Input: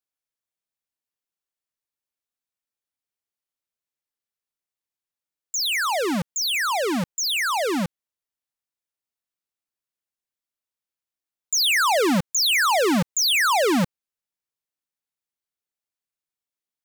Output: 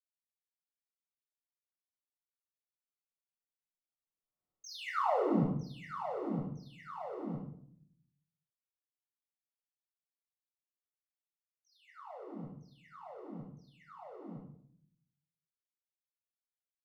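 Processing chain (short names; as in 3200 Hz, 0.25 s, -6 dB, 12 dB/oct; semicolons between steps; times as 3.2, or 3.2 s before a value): Doppler pass-by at 4.5, 59 m/s, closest 7.1 m; polynomial smoothing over 65 samples; shoebox room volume 940 m³, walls furnished, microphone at 6.3 m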